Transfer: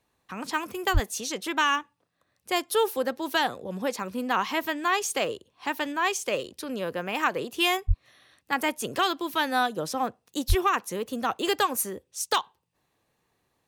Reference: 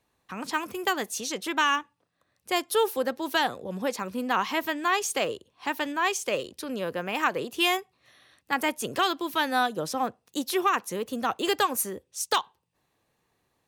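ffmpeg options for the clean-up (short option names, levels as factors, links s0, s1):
-filter_complex "[0:a]asplit=3[s0][s1][s2];[s0]afade=t=out:st=0.93:d=0.02[s3];[s1]highpass=f=140:w=0.5412,highpass=f=140:w=1.3066,afade=t=in:st=0.93:d=0.02,afade=t=out:st=1.05:d=0.02[s4];[s2]afade=t=in:st=1.05:d=0.02[s5];[s3][s4][s5]amix=inputs=3:normalize=0,asplit=3[s6][s7][s8];[s6]afade=t=out:st=7.87:d=0.02[s9];[s7]highpass=f=140:w=0.5412,highpass=f=140:w=1.3066,afade=t=in:st=7.87:d=0.02,afade=t=out:st=7.99:d=0.02[s10];[s8]afade=t=in:st=7.99:d=0.02[s11];[s9][s10][s11]amix=inputs=3:normalize=0,asplit=3[s12][s13][s14];[s12]afade=t=out:st=10.48:d=0.02[s15];[s13]highpass=f=140:w=0.5412,highpass=f=140:w=1.3066,afade=t=in:st=10.48:d=0.02,afade=t=out:st=10.6:d=0.02[s16];[s14]afade=t=in:st=10.6:d=0.02[s17];[s15][s16][s17]amix=inputs=3:normalize=0"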